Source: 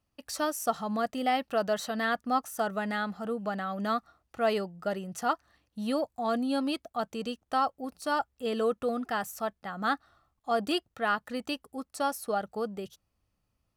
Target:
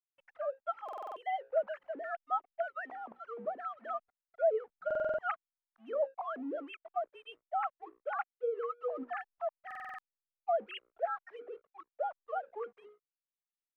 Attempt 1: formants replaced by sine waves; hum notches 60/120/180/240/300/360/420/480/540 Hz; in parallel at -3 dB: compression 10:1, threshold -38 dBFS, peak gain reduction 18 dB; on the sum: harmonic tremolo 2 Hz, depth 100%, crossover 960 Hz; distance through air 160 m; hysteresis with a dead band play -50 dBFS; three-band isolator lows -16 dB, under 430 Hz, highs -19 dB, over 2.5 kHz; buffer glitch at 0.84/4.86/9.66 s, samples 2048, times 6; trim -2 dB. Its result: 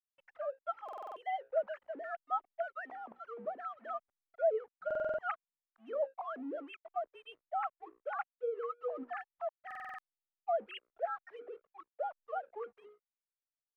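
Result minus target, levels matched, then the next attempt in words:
compression: peak gain reduction +9.5 dB
formants replaced by sine waves; hum notches 60/120/180/240/300/360/420/480/540 Hz; in parallel at -3 dB: compression 10:1, threshold -27.5 dBFS, peak gain reduction 8.5 dB; on the sum: harmonic tremolo 2 Hz, depth 100%, crossover 960 Hz; distance through air 160 m; hysteresis with a dead band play -50 dBFS; three-band isolator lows -16 dB, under 430 Hz, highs -19 dB, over 2.5 kHz; buffer glitch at 0.84/4.86/9.66 s, samples 2048, times 6; trim -2 dB

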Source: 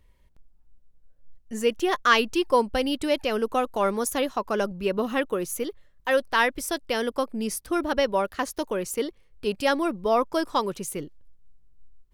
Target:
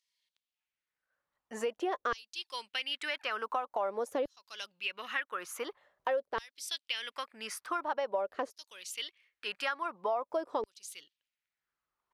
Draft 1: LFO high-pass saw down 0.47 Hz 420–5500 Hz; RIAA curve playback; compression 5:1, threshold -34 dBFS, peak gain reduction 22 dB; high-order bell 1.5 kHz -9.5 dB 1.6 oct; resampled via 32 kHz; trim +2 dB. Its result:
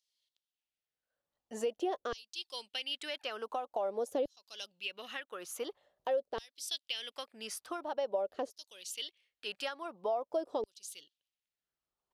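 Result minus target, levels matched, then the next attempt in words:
2 kHz band -5.5 dB
LFO high-pass saw down 0.47 Hz 420–5500 Hz; RIAA curve playback; compression 5:1, threshold -34 dBFS, peak gain reduction 22 dB; resampled via 32 kHz; trim +2 dB

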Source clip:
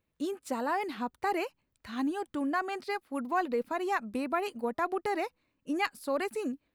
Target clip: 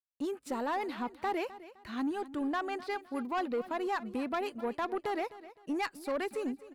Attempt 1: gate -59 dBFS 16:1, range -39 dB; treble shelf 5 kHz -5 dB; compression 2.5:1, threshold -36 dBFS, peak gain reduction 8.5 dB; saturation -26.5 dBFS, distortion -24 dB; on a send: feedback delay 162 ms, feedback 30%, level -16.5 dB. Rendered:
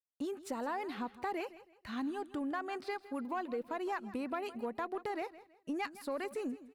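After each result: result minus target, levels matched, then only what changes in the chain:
compression: peak gain reduction +8.5 dB; echo 95 ms early
remove: compression 2.5:1, threshold -36 dBFS, peak gain reduction 8.5 dB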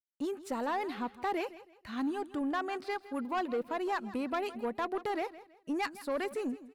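echo 95 ms early
change: feedback delay 257 ms, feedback 30%, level -16.5 dB

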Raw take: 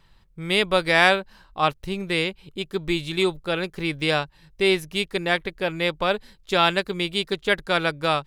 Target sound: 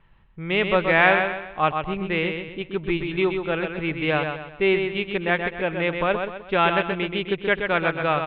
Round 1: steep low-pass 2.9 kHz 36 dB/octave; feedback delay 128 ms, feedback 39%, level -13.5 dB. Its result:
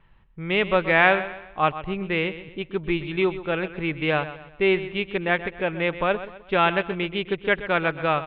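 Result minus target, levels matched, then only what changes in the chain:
echo-to-direct -7.5 dB
change: feedback delay 128 ms, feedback 39%, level -6 dB

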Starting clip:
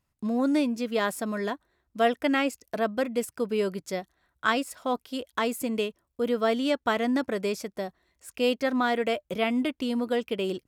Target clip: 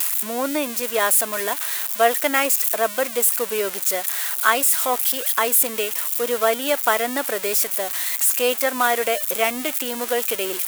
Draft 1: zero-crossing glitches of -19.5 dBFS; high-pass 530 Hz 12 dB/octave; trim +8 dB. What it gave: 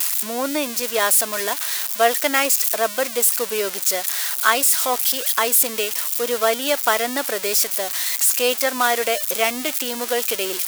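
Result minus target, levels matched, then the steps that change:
4 kHz band +3.0 dB
add after high-pass: dynamic bell 5 kHz, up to -7 dB, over -44 dBFS, Q 1.2

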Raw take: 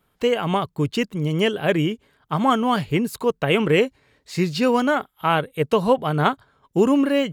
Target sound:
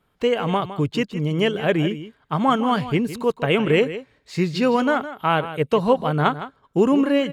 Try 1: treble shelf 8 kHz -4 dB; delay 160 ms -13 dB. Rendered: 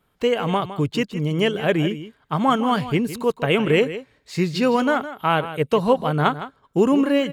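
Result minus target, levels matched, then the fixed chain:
8 kHz band +3.0 dB
treble shelf 8 kHz -10.5 dB; delay 160 ms -13 dB

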